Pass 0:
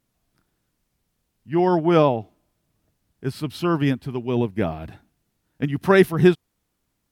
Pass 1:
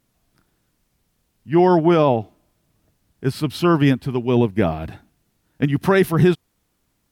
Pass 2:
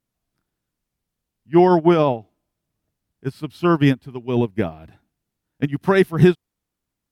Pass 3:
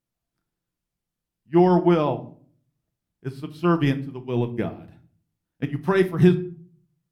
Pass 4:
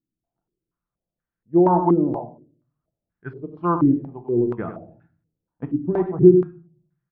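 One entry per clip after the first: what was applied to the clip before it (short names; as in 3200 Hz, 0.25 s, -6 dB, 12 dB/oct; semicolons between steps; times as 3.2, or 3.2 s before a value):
limiter -11.5 dBFS, peak gain reduction 8 dB; gain +5.5 dB
upward expander 2.5:1, over -22 dBFS; gain +3.5 dB
shoebox room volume 410 m³, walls furnished, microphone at 0.8 m; gain -5.5 dB
echo 95 ms -9.5 dB; stepped low-pass 4.2 Hz 300–1600 Hz; gain -4 dB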